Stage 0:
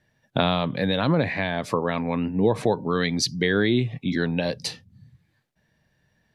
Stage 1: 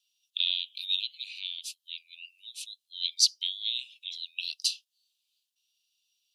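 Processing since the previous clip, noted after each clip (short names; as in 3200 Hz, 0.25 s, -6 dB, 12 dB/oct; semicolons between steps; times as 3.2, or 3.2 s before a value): steep high-pass 2700 Hz 96 dB/oct; gain +3 dB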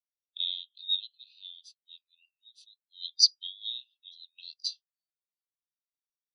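per-bin compression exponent 0.6; tilt +2 dB/oct; spectral expander 2.5:1; gain -3 dB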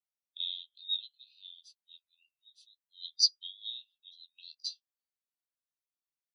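doubler 13 ms -8 dB; gain -5 dB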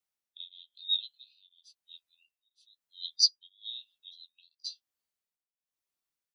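beating tremolo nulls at 1 Hz; gain +4.5 dB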